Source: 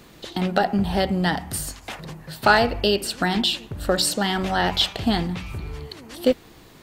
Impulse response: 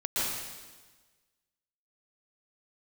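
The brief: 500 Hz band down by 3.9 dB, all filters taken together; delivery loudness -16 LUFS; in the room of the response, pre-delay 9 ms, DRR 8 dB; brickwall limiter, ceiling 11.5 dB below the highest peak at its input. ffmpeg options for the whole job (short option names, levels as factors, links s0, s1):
-filter_complex "[0:a]equalizer=f=500:t=o:g=-5,alimiter=limit=0.15:level=0:latency=1,asplit=2[s0][s1];[1:a]atrim=start_sample=2205,adelay=9[s2];[s1][s2]afir=irnorm=-1:irlink=0,volume=0.141[s3];[s0][s3]amix=inputs=2:normalize=0,volume=3.55"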